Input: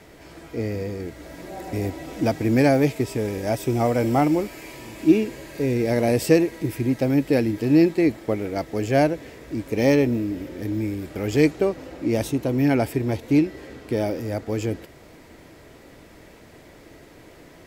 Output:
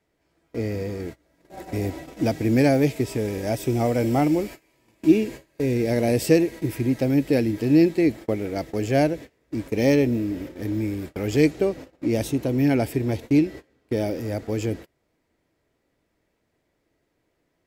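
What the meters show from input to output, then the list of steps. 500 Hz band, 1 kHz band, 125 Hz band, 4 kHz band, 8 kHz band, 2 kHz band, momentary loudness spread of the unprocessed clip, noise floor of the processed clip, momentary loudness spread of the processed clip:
-1.0 dB, -3.0 dB, 0.0 dB, -0.5 dB, -0.5 dB, -2.0 dB, 13 LU, -73 dBFS, 12 LU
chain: gate -34 dBFS, range -25 dB; dynamic EQ 1100 Hz, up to -6 dB, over -36 dBFS, Q 1.2

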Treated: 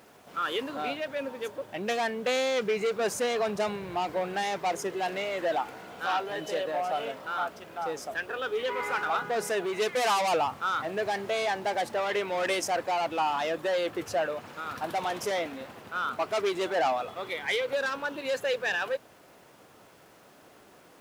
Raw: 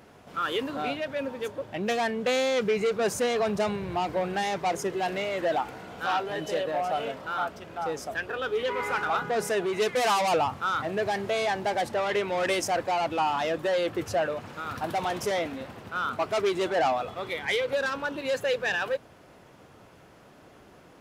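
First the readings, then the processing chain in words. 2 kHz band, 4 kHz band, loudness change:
-1.0 dB, -1.0 dB, -2.0 dB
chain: requantised 10-bit, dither none; low shelf 160 Hz -11.5 dB; gain -1 dB

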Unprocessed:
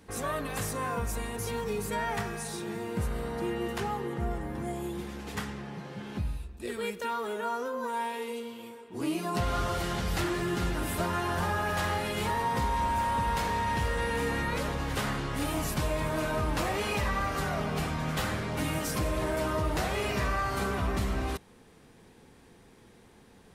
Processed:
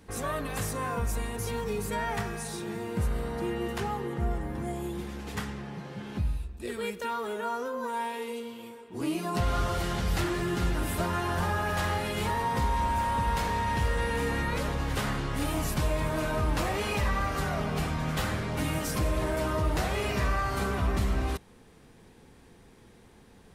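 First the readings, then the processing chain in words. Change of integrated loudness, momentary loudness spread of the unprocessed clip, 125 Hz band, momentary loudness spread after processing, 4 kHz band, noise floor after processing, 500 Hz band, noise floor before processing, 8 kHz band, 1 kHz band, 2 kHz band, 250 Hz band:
+1.0 dB, 7 LU, +2.5 dB, 7 LU, 0.0 dB, -55 dBFS, 0.0 dB, -56 dBFS, 0.0 dB, 0.0 dB, 0.0 dB, +1.0 dB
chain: low shelf 95 Hz +5.5 dB

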